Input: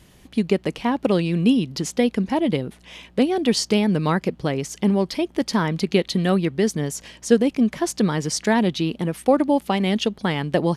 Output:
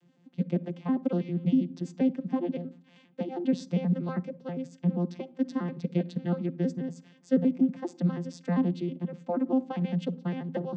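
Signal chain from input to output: vocoder on a broken chord bare fifth, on F3, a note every 80 ms; on a send: reverberation RT60 0.40 s, pre-delay 46 ms, DRR 21 dB; on the sum: trim -7.5 dB

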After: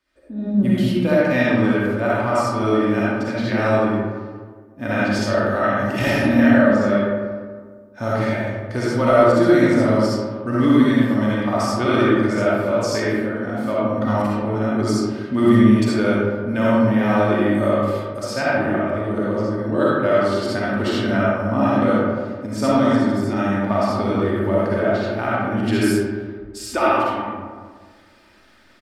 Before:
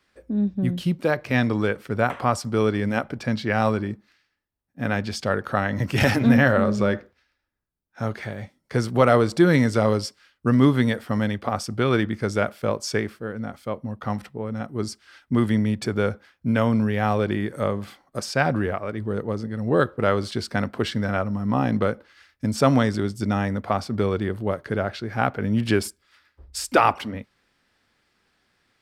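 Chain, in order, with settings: comb 3.3 ms, depth 48%; level rider gain up to 16 dB; algorithmic reverb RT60 1.7 s, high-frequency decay 0.4×, pre-delay 20 ms, DRR -7.5 dB; trim -10 dB

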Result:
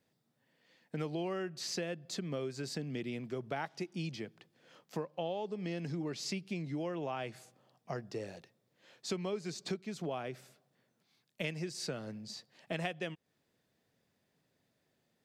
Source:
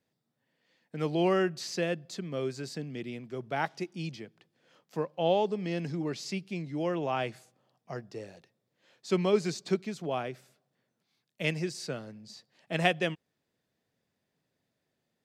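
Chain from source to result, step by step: compression 6:1, threshold -38 dBFS, peak gain reduction 17.5 dB; trim +3 dB

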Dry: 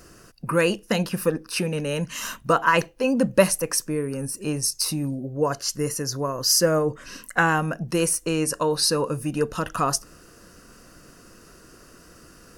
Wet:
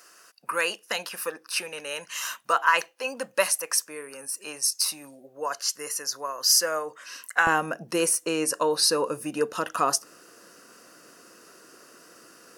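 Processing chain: high-pass 850 Hz 12 dB/octave, from 7.47 s 340 Hz

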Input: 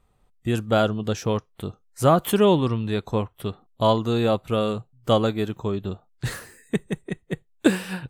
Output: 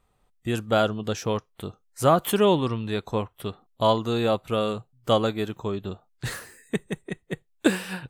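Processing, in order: bass shelf 340 Hz -5 dB

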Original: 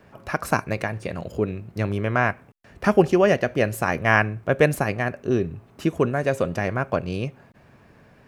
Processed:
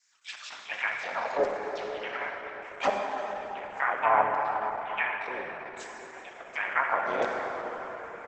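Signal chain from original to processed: low-pass that closes with the level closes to 490 Hz, closed at -17 dBFS; peak limiter -15.5 dBFS, peak gain reduction 9.5 dB; touch-sensitive phaser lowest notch 470 Hz, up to 3.5 kHz, full sweep at -24 dBFS; LFO high-pass saw down 0.69 Hz 600–5200 Hz; harmony voices +5 st 0 dB; on a send: early reflections 63 ms -18 dB, 76 ms -17 dB; on the sum: plate-style reverb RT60 4.9 s, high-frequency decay 0.5×, DRR 0.5 dB; trim +1 dB; Opus 12 kbps 48 kHz

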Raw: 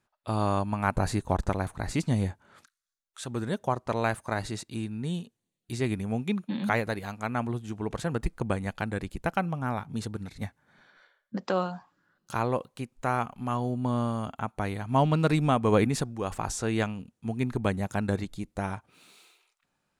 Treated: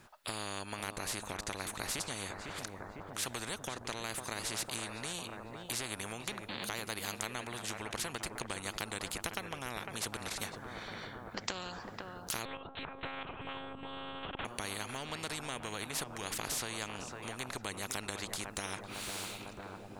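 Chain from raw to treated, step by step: dynamic bell 420 Hz, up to +5 dB, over -38 dBFS, Q 1; compression 6:1, threshold -32 dBFS, peak gain reduction 16.5 dB; filtered feedback delay 503 ms, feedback 69%, low-pass 1.4 kHz, level -13.5 dB; 12.45–14.45 s: monotone LPC vocoder at 8 kHz 270 Hz; spectrum-flattening compressor 4:1; trim +3.5 dB

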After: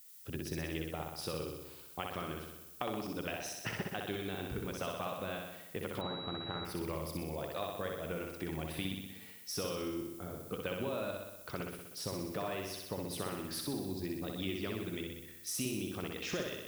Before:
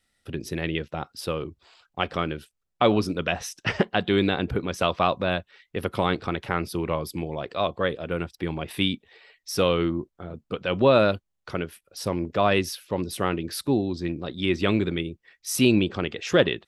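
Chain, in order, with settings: compression 10:1, threshold -29 dBFS, peak gain reduction 16 dB; added noise violet -50 dBFS; flutter echo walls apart 10.7 m, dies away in 1 s; 6.01–6.65 s: class-D stage that switches slowly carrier 3.9 kHz; trim -7 dB

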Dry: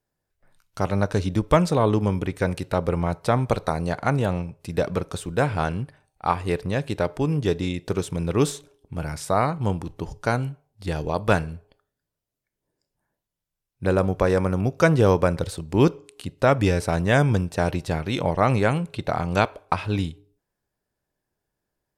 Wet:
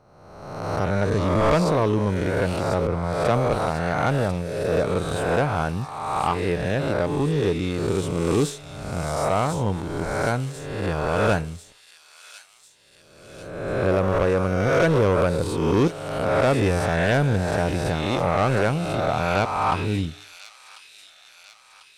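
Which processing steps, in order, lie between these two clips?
reverse spectral sustain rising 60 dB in 1.28 s; treble shelf 4.3 kHz -6 dB; saturation -13 dBFS, distortion -13 dB; feedback echo behind a high-pass 1045 ms, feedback 58%, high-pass 4.4 kHz, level -4 dB; 2.87–3.52 s: three bands expanded up and down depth 100%

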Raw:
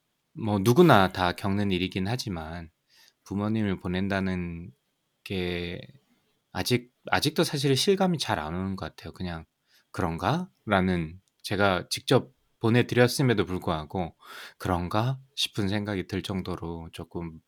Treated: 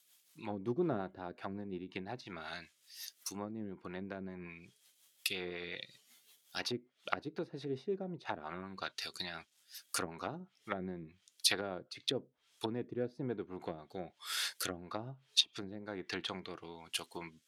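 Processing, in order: low-pass that closes with the level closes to 400 Hz, closed at -22.5 dBFS; differentiator; rotary cabinet horn 5.5 Hz, later 1.1 Hz, at 10.63 s; trim +15.5 dB

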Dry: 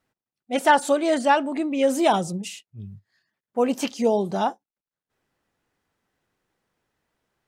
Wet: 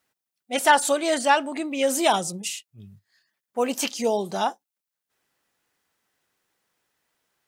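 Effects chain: tilt EQ +2.5 dB/octave

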